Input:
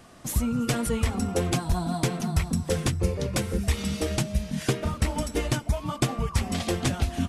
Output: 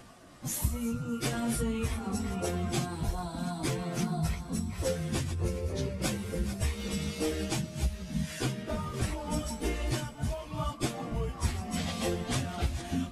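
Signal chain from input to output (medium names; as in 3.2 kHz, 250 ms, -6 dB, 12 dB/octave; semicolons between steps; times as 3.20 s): chunks repeated in reverse 194 ms, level -10.5 dB; compression 20:1, threshold -24 dBFS, peak gain reduction 8.5 dB; plain phase-vocoder stretch 1.8×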